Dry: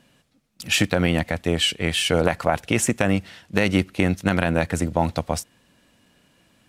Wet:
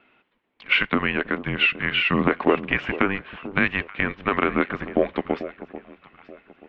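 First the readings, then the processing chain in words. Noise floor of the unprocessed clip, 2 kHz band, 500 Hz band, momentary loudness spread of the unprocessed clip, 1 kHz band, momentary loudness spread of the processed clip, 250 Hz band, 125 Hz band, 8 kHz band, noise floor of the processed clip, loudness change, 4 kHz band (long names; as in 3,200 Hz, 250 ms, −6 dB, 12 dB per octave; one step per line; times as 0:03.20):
−62 dBFS, +4.0 dB, −1.5 dB, 6 LU, +0.5 dB, 10 LU, −2.5 dB, −8.5 dB, below −35 dB, −69 dBFS, −0.5 dB, −4.0 dB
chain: single-sideband voice off tune −290 Hz 520–3,300 Hz
delay that swaps between a low-pass and a high-pass 440 ms, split 920 Hz, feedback 52%, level −12.5 dB
level +3.5 dB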